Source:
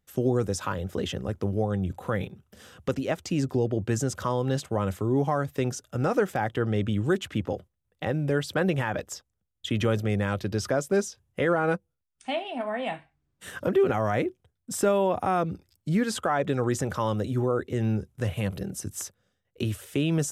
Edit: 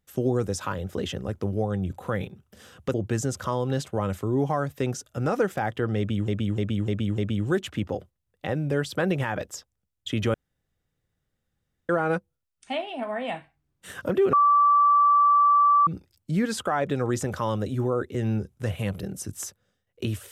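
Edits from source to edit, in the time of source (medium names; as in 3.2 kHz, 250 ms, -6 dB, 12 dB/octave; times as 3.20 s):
2.94–3.72 s: delete
6.76–7.06 s: loop, 5 plays
9.92–11.47 s: room tone
13.91–15.45 s: bleep 1.16 kHz -15 dBFS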